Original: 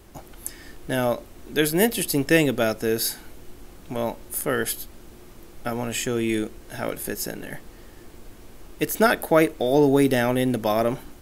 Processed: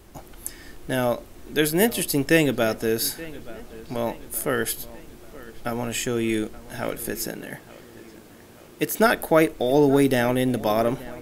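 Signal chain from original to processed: 7.27–8.99 s: high-pass 100 Hz 12 dB/octave; feedback echo behind a low-pass 877 ms, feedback 49%, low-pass 3.8 kHz, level -19 dB

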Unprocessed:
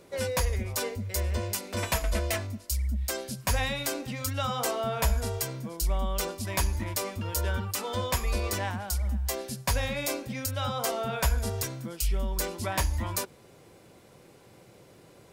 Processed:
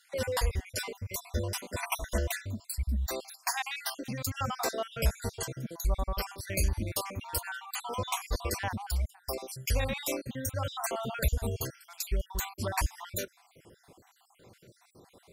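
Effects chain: random holes in the spectrogram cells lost 55%

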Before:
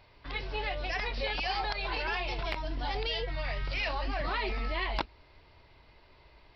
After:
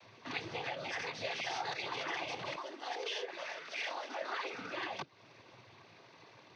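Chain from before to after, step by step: compression 6:1, threshold -38 dBFS, peak gain reduction 12 dB; noise-vocoded speech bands 16; 2.56–4.54 s: high-pass 320 Hz 24 dB/octave; trim +3.5 dB

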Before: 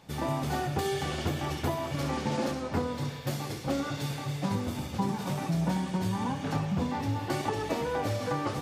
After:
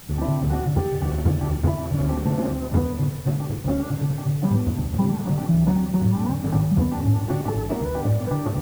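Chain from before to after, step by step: low-pass 2.1 kHz; tilt EQ -4 dB/octave; added noise white -45 dBFS

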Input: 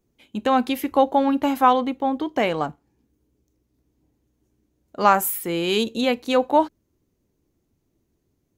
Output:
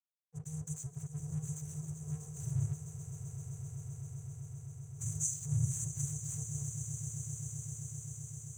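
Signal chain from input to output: noise-vocoded speech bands 8; FFT band-reject 160–5900 Hz; crossover distortion -59.5 dBFS; echo with a slow build-up 130 ms, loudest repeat 8, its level -13 dB; trim +6 dB

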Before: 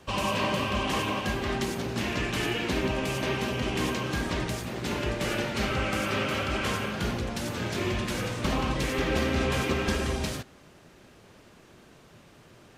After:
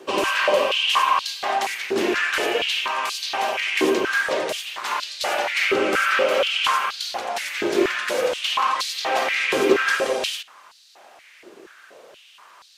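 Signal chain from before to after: step-sequenced high-pass 4.2 Hz 370–4200 Hz; trim +5 dB

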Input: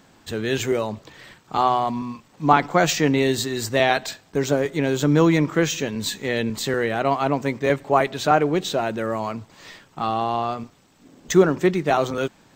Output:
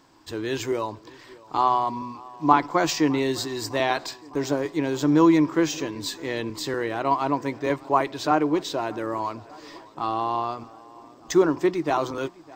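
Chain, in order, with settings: graphic EQ with 31 bands 200 Hz -10 dB, 315 Hz +11 dB, 1 kHz +11 dB, 5 kHz +8 dB; on a send: tape echo 607 ms, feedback 72%, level -21.5 dB, low-pass 3.3 kHz; on the sum: trim -6.5 dB

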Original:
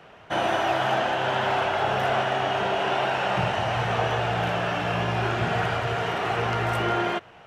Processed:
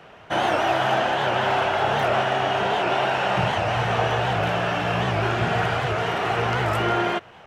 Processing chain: warped record 78 rpm, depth 160 cents; trim +2.5 dB

